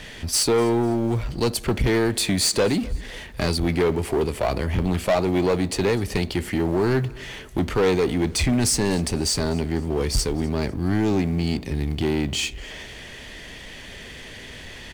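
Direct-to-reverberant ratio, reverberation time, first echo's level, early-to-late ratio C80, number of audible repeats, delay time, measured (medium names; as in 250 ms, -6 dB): no reverb, no reverb, -23.0 dB, no reverb, 2, 249 ms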